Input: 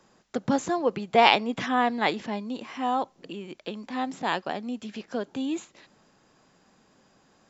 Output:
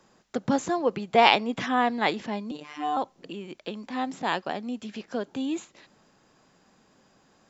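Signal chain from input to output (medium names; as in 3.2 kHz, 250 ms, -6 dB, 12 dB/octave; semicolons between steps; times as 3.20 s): 2.51–2.97 s: robot voice 149 Hz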